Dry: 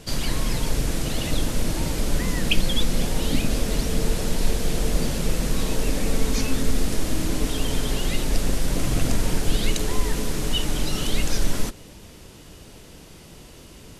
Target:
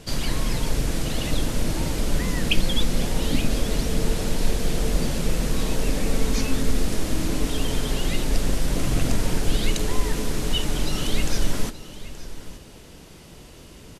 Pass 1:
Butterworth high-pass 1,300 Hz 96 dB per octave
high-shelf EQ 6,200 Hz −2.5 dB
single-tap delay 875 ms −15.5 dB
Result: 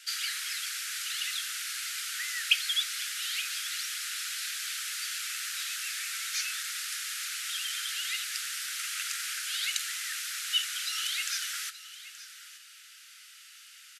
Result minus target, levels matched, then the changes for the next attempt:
1,000 Hz band −5.5 dB
remove: Butterworth high-pass 1,300 Hz 96 dB per octave

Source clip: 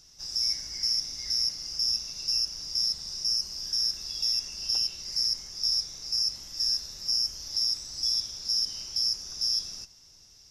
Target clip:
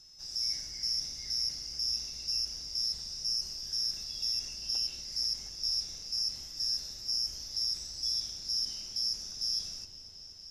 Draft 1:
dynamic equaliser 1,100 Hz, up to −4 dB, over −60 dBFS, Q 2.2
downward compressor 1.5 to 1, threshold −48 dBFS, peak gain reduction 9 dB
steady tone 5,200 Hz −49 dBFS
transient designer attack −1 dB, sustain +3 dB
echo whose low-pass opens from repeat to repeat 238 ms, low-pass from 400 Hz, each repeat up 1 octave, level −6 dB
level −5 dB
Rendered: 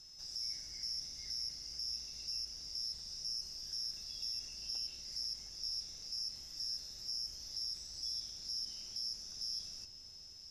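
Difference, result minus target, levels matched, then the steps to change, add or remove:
downward compressor: peak gain reduction +9 dB
remove: downward compressor 1.5 to 1, threshold −48 dBFS, peak gain reduction 9 dB

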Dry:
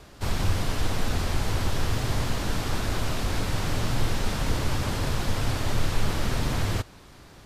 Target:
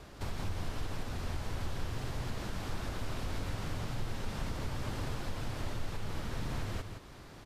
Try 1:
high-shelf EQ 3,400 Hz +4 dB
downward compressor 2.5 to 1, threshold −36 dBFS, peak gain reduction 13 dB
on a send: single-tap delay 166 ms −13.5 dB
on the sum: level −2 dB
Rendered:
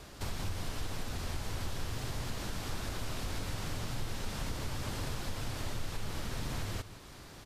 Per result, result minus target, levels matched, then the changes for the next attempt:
8,000 Hz band +5.5 dB; echo-to-direct −6.5 dB
change: high-shelf EQ 3,400 Hz −4 dB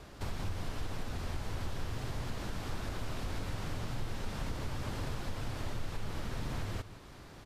echo-to-direct −6.5 dB
change: single-tap delay 166 ms −7 dB

